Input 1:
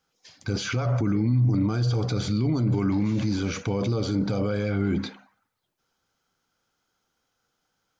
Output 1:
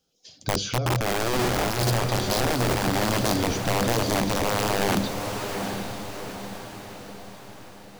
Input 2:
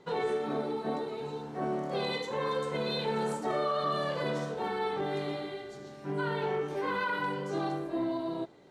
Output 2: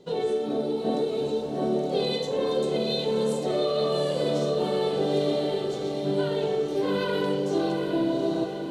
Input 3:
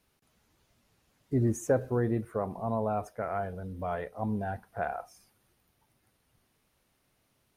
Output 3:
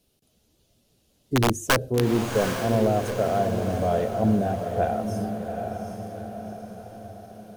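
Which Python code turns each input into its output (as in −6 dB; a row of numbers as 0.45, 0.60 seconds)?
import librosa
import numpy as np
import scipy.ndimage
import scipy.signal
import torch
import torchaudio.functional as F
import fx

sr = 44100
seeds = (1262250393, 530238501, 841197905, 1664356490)

p1 = fx.band_shelf(x, sr, hz=1400.0, db=-12.0, octaves=1.7)
p2 = (np.mod(10.0 ** (18.5 / 20.0) * p1 + 1.0, 2.0) - 1.0) / 10.0 ** (18.5 / 20.0)
p3 = fx.hum_notches(p2, sr, base_hz=50, count=3)
p4 = fx.rider(p3, sr, range_db=3, speed_s=0.5)
p5 = p4 + fx.echo_diffused(p4, sr, ms=791, feedback_pct=52, wet_db=-6, dry=0)
y = p5 * 10.0 ** (-26 / 20.0) / np.sqrt(np.mean(np.square(p5)))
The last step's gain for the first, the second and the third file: +0.5, +7.0, +8.0 decibels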